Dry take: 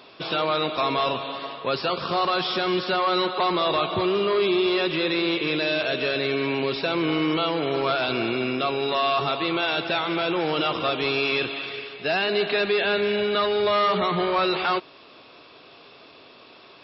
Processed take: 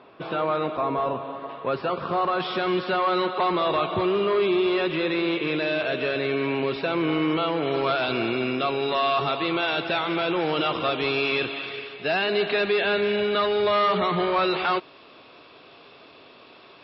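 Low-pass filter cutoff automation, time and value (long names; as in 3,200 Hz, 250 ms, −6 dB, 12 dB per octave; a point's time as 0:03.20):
1,700 Hz
from 0:00.77 1,200 Hz
from 0:01.49 1,800 Hz
from 0:02.40 2,800 Hz
from 0:07.65 4,100 Hz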